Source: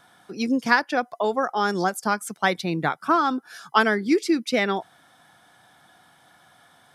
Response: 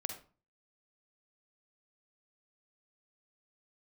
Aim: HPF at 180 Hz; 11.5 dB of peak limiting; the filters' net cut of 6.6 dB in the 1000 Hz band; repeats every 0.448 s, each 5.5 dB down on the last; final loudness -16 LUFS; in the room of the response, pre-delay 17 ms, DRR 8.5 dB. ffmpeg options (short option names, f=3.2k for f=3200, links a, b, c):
-filter_complex "[0:a]highpass=180,equalizer=f=1k:t=o:g=-9,alimiter=limit=-18.5dB:level=0:latency=1,aecho=1:1:448|896|1344|1792|2240|2688|3136:0.531|0.281|0.149|0.079|0.0419|0.0222|0.0118,asplit=2[a][b];[1:a]atrim=start_sample=2205,adelay=17[c];[b][c]afir=irnorm=-1:irlink=0,volume=-8.5dB[d];[a][d]amix=inputs=2:normalize=0,volume=12dB"